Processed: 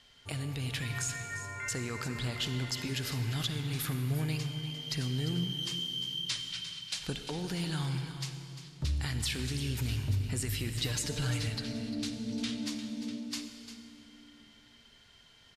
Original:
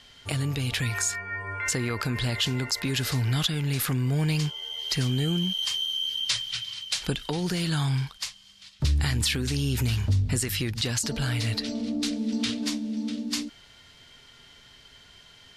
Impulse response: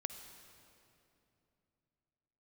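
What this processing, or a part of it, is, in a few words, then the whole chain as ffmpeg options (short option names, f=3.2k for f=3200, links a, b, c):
cave: -filter_complex "[0:a]aecho=1:1:349:0.251[a];[1:a]atrim=start_sample=2205[b];[a][b]afir=irnorm=-1:irlink=0,asettb=1/sr,asplit=3[c][d][e];[c]atrim=end=10.744[f];[d]atrim=start=10.74:end=11.48,asetpts=PTS-STARTPTS,afade=t=in:d=0.004:c=qsin,afade=t=out:st=0.736:d=0.004:c=qsin,aecho=1:1:6.6:0.72,atrim=end_sample=32634[g];[e]atrim=start=11.476[h];[f][g]acrossfade=d=0.004:c1=hsin:c2=qsin[i];[i][h]acrossfade=d=0.004:c1=qsin:c2=hsin,volume=-6.5dB"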